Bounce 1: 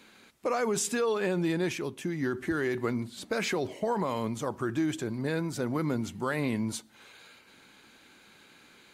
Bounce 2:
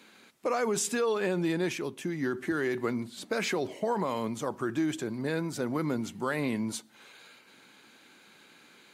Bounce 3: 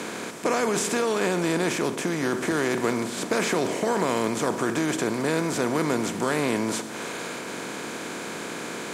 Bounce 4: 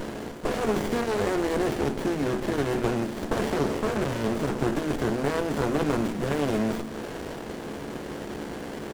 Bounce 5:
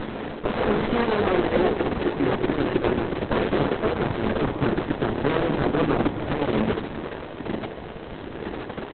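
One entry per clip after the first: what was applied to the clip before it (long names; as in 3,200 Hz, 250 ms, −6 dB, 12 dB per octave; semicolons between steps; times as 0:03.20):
high-pass filter 140 Hz 12 dB per octave
compressor on every frequency bin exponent 0.4
double-tracking delay 14 ms −5 dB; windowed peak hold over 33 samples
delay that plays each chunk backwards 591 ms, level −7 dB; far-end echo of a speakerphone 150 ms, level −7 dB; level +4.5 dB; Opus 6 kbit/s 48,000 Hz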